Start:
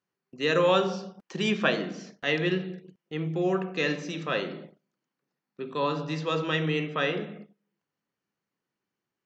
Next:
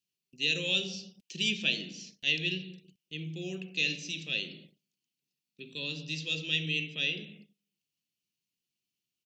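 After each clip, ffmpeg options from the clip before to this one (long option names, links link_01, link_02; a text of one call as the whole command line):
ffmpeg -i in.wav -af "firequalizer=gain_entry='entry(110,0);entry(1100,-29);entry(2600,10)':delay=0.05:min_phase=1,volume=-6dB" out.wav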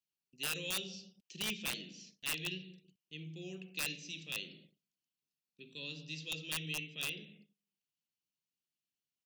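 ffmpeg -i in.wav -af "aeval=exprs='(mod(10*val(0)+1,2)-1)/10':channel_layout=same,volume=-8dB" out.wav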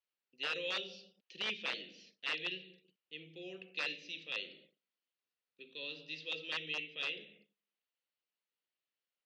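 ffmpeg -i in.wav -af "highpass=360,equalizer=frequency=510:width_type=q:width=4:gain=7,equalizer=frequency=1300:width_type=q:width=4:gain=3,equalizer=frequency=1900:width_type=q:width=4:gain=4,lowpass=frequency=4300:width=0.5412,lowpass=frequency=4300:width=1.3066,volume=1dB" out.wav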